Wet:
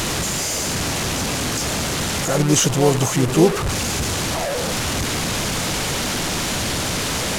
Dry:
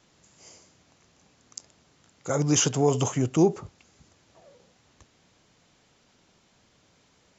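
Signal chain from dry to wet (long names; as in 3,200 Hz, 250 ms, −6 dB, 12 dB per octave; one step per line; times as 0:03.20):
linear delta modulator 64 kbit/s, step −22.5 dBFS
pitch-shifted copies added +4 semitones −8 dB
low-shelf EQ 70 Hz +7 dB
level +5 dB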